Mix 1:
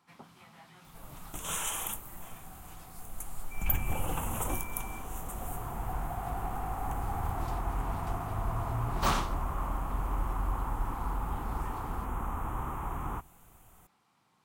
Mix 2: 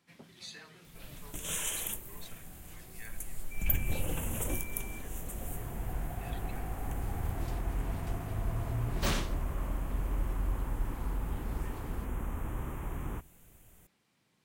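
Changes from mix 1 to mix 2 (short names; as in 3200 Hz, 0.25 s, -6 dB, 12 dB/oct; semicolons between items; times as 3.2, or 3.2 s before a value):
speech: unmuted; master: add band shelf 1000 Hz -10.5 dB 1.1 oct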